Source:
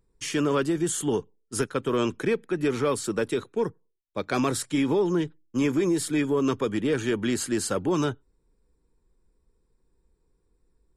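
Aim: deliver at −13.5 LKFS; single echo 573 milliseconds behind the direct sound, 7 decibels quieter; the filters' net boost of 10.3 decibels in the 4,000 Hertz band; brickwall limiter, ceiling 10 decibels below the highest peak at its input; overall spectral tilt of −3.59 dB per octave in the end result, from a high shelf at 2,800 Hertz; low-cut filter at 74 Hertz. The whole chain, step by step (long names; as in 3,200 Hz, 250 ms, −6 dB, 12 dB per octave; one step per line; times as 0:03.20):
high-pass filter 74 Hz
high-shelf EQ 2,800 Hz +6.5 dB
parametric band 4,000 Hz +8 dB
brickwall limiter −20 dBFS
single-tap delay 573 ms −7 dB
level +15 dB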